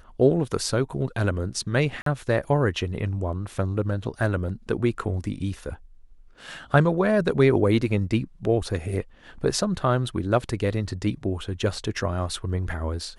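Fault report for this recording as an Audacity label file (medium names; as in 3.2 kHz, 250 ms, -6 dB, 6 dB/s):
2.020000	2.060000	dropout 43 ms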